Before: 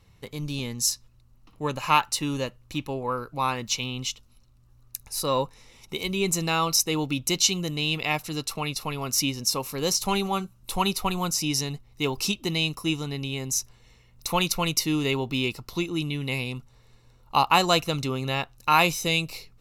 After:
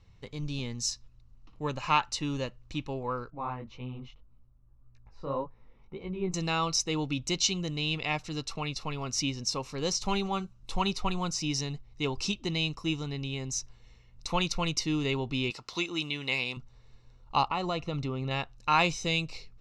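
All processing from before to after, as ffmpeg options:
ffmpeg -i in.wav -filter_complex "[0:a]asettb=1/sr,asplit=3[link_01][link_02][link_03];[link_01]atrim=end=3.304[link_04];[link_02]atrim=start=3.3:end=6.34,asetpts=PTS-STARTPTS,afade=type=in:duration=0.004:curve=qsin,afade=type=out:start_time=3.036:duration=0.004:curve=qsin,lowpass=1300,flanger=delay=16:depth=6.8:speed=1.8[link_05];[link_03]atrim=start=6.336[link_06];[link_04][link_05]acrossfade=duration=0.004:curve1=hsin:curve2=qsin[link_07];[link_07][link_06]acrossfade=duration=0.004:curve1=qsin:curve2=hsin,asettb=1/sr,asplit=3[link_08][link_09][link_10];[link_08]atrim=end=15.504[link_11];[link_09]atrim=start=15.5:end=16.57,asetpts=PTS-STARTPTS,afade=type=in:duration=0.004:curve=qsin,afade=type=out:start_time=1.066:duration=0.004:curve=qsin,highpass=frequency=830:poles=1,acontrast=70[link_12];[link_10]atrim=start=16.566[link_13];[link_11][link_12]acrossfade=duration=0.004:curve1=hsin:curve2=qsin[link_14];[link_14][link_13]acrossfade=duration=0.004:curve1=qsin:curve2=hsin,asettb=1/sr,asplit=3[link_15][link_16][link_17];[link_15]atrim=end=17.484[link_18];[link_16]atrim=start=17.48:end=18.31,asetpts=PTS-STARTPTS,afade=type=in:duration=0.004:curve=qsin,afade=type=out:start_time=0.826:duration=0.004:curve=qsin,aemphasis=mode=reproduction:type=75fm,acompressor=threshold=-24dB:ratio=2.5:attack=3.2:release=140:knee=1:detection=peak,asuperstop=centerf=1600:order=8:qfactor=7.1[link_19];[link_17]atrim=start=18.306[link_20];[link_18][link_19]acrossfade=duration=0.004:curve1=hsin:curve2=qsin[link_21];[link_21][link_20]acrossfade=duration=0.004:curve1=qsin:curve2=hsin,lowpass=frequency=6800:width=0.5412,lowpass=frequency=6800:width=1.3066,lowshelf=frequency=76:gain=9.5,volume=-5dB" out.wav

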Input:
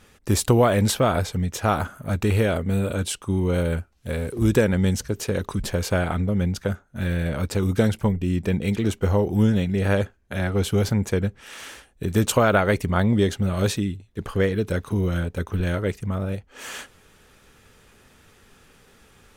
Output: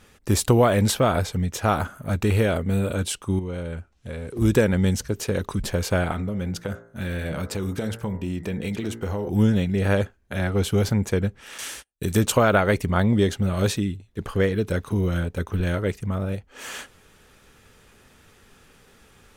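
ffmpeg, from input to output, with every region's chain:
ffmpeg -i in.wav -filter_complex "[0:a]asettb=1/sr,asplit=3[link_01][link_02][link_03];[link_01]atrim=end=3.394[link_04];[link_02]atrim=start=3.39:end=4.36,asetpts=PTS-STARTPTS,afade=type=in:duration=0.004:curve=qsin,afade=type=out:start_time=0.966:duration=0.004:curve=qsin,lowpass=8300,equalizer=frequency=4500:width=6.6:gain=-3.5,acompressor=threshold=-34dB:ratio=2:attack=3.2:release=140:knee=1:detection=peak[link_05];[link_03]atrim=start=4.356[link_06];[link_04][link_05]acrossfade=duration=0.004:curve1=hsin:curve2=qsin[link_07];[link_07][link_06]acrossfade=duration=0.004:curve1=qsin:curve2=hsin,asettb=1/sr,asplit=3[link_08][link_09][link_10];[link_08]atrim=end=6.124[link_11];[link_09]atrim=start=6.12:end=9.29,asetpts=PTS-STARTPTS,afade=type=in:duration=0.004:curve=qsin,afade=type=out:start_time=3.166:duration=0.004:curve=qsin,lowshelf=frequency=85:gain=-8.5,bandreject=frequency=57.09:width_type=h:width=4,bandreject=frequency=114.18:width_type=h:width=4,bandreject=frequency=171.27:width_type=h:width=4,bandreject=frequency=228.36:width_type=h:width=4,bandreject=frequency=285.45:width_type=h:width=4,bandreject=frequency=342.54:width_type=h:width=4,bandreject=frequency=399.63:width_type=h:width=4,bandreject=frequency=456.72:width_type=h:width=4,bandreject=frequency=513.81:width_type=h:width=4,bandreject=frequency=570.9:width_type=h:width=4,bandreject=frequency=627.99:width_type=h:width=4,bandreject=frequency=685.08:width_type=h:width=4,bandreject=frequency=742.17:width_type=h:width=4,bandreject=frequency=799.26:width_type=h:width=4,bandreject=frequency=856.35:width_type=h:width=4,bandreject=frequency=913.44:width_type=h:width=4,bandreject=frequency=970.53:width_type=h:width=4,bandreject=frequency=1027.62:width_type=h:width=4,bandreject=frequency=1084.71:width_type=h:width=4,bandreject=frequency=1141.8:width_type=h:width=4,bandreject=frequency=1198.89:width_type=h:width=4,bandreject=frequency=1255.98:width_type=h:width=4,bandreject=frequency=1313.07:width_type=h:width=4,bandreject=frequency=1370.16:width_type=h:width=4,bandreject=frequency=1427.25:width_type=h:width=4,bandreject=frequency=1484.34:width_type=h:width=4,bandreject=frequency=1541.43:width_type=h:width=4,bandreject=frequency=1598.52:width_type=h:width=4,bandreject=frequency=1655.61:width_type=h:width=4,bandreject=frequency=1712.7:width_type=h:width=4,bandreject=frequency=1769.79:width_type=h:width=4,bandreject=frequency=1826.88:width_type=h:width=4,bandreject=frequency=1883.97:width_type=h:width=4,bandreject=frequency=1941.06:width_type=h:width=4,bandreject=frequency=1998.15:width_type=h:width=4,bandreject=frequency=2055.24:width_type=h:width=4,bandreject=frequency=2112.33:width_type=h:width=4,acompressor=threshold=-23dB:ratio=6:attack=3.2:release=140:knee=1:detection=peak[link_12];[link_10]atrim=start=9.286[link_13];[link_11][link_12]acrossfade=duration=0.004:curve1=hsin:curve2=qsin[link_14];[link_14][link_13]acrossfade=duration=0.004:curve1=qsin:curve2=hsin,asettb=1/sr,asplit=3[link_15][link_16][link_17];[link_15]atrim=end=11.584[link_18];[link_16]atrim=start=11.58:end=12.17,asetpts=PTS-STARTPTS,afade=type=in:duration=0.004:curve=qsin,afade=type=out:start_time=0.586:duration=0.004:curve=qsin,agate=range=-32dB:threshold=-47dB:ratio=16:release=100:detection=peak,equalizer=frequency=10000:width=0.33:gain=10.5[link_19];[link_17]atrim=start=12.166[link_20];[link_18][link_19]acrossfade=duration=0.004:curve1=hsin:curve2=qsin[link_21];[link_21][link_20]acrossfade=duration=0.004:curve1=qsin:curve2=hsin" out.wav

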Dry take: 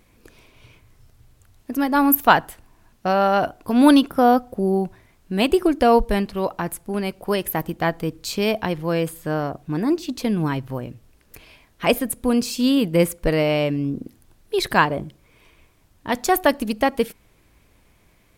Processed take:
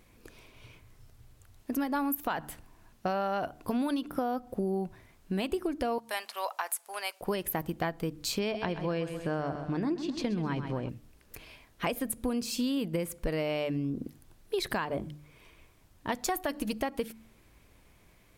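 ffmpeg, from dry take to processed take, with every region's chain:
ffmpeg -i in.wav -filter_complex "[0:a]asettb=1/sr,asplit=3[link_01][link_02][link_03];[link_01]atrim=end=5.984[link_04];[link_02]atrim=start=5.98:end=7.21,asetpts=PTS-STARTPTS,afade=type=in:duration=0.004:curve=qsin,afade=type=out:start_time=1.226:duration=0.004:curve=qsin,highpass=frequency=690:width=0.5412,highpass=frequency=690:width=1.3066,equalizer=frequency=9100:width=0.48:gain=5.5[link_05];[link_03]atrim=start=7.206[link_06];[link_04][link_05]acrossfade=duration=0.004:curve1=hsin:curve2=qsin[link_07];[link_07][link_06]acrossfade=duration=0.004:curve1=qsin:curve2=hsin,asettb=1/sr,asplit=3[link_08][link_09][link_10];[link_08]atrim=end=8.394[link_11];[link_09]atrim=start=8.39:end=10.89,asetpts=PTS-STARTPTS,afade=type=in:duration=0.004:curve=qsin,afade=type=out:start_time=2.496:duration=0.004:curve=qsin,lowpass=5700,aecho=1:1:130|260|390|520|650:0.282|0.124|0.0546|0.024|0.0106,atrim=end_sample=110250[link_12];[link_10]atrim=start=10.886[link_13];[link_11][link_12]acrossfade=duration=0.004:curve1=hsin:curve2=qsin[link_14];[link_14][link_13]acrossfade=duration=0.004:curve1=qsin:curve2=hsin,asettb=1/sr,asplit=3[link_15][link_16][link_17];[link_15]atrim=end=16.254[link_18];[link_16]atrim=start=16.25:end=16.79,asetpts=PTS-STARTPTS,afade=type=in:duration=0.004:curve=qsin,afade=type=out:start_time=0.536:duration=0.004:curve=qsin,bandreject=frequency=420:width=7,aecho=1:1:6.4:0.33,atrim=end_sample=23814[link_19];[link_17]atrim=start=16.786[link_20];[link_18][link_19]acrossfade=duration=0.004:curve1=hsin:curve2=qsin[link_21];[link_21][link_20]acrossfade=duration=0.004:curve1=qsin:curve2=hsin,bandreject=frequency=74.26:width_type=h:width=4,bandreject=frequency=148.52:width_type=h:width=4,bandreject=frequency=222.78:width_type=h:width=4,bandreject=frequency=297.04:width_type=h:width=4,alimiter=limit=-9.5dB:level=0:latency=1:release=129,acompressor=threshold=-25dB:ratio=6,volume=-3dB" out.wav

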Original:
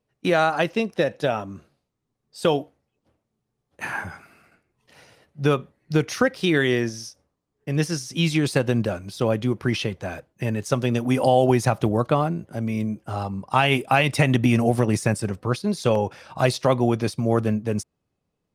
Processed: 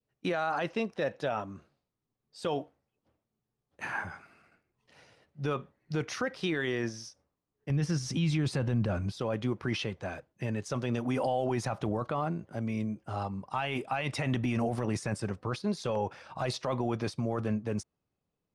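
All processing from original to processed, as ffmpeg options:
ffmpeg -i in.wav -filter_complex "[0:a]asettb=1/sr,asplit=3[link_01][link_02][link_03];[link_01]atrim=end=7.704[link_04];[link_02]atrim=start=7.7:end=9.12,asetpts=PTS-STARTPTS,afade=type=in:duration=0.004:curve=qsin,afade=type=out:start_time=1.416:duration=0.004:curve=qsin,bass=frequency=250:gain=10,treble=frequency=4000:gain=-2,acompressor=mode=upward:threshold=-18dB:ratio=2.5:attack=3.2:release=140:knee=2.83:detection=peak[link_05];[link_03]atrim=start=9.116[link_06];[link_04][link_05]acrossfade=duration=0.004:curve1=hsin:curve2=qsin[link_07];[link_07][link_06]acrossfade=duration=0.004:curve1=qsin:curve2=hsin,adynamicequalizer=threshold=0.0282:dfrequency=1100:dqfactor=0.79:tfrequency=1100:tqfactor=0.79:attack=5:release=100:ratio=0.375:range=2.5:mode=boostabove:tftype=bell,alimiter=limit=-14dB:level=0:latency=1:release=12,lowpass=7600,volume=-7.5dB" out.wav

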